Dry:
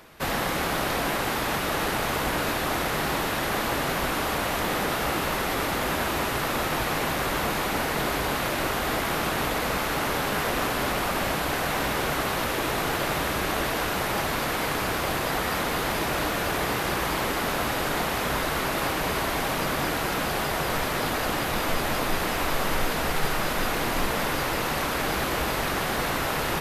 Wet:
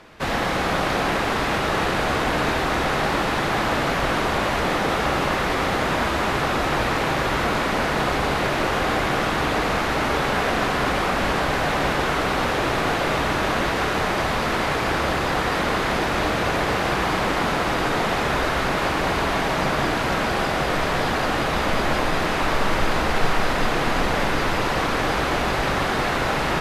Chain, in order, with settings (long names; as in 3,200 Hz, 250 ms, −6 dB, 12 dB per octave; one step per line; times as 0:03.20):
high-frequency loss of the air 64 metres
convolution reverb RT60 5.0 s, pre-delay 18 ms, DRR 3.5 dB
level +3.5 dB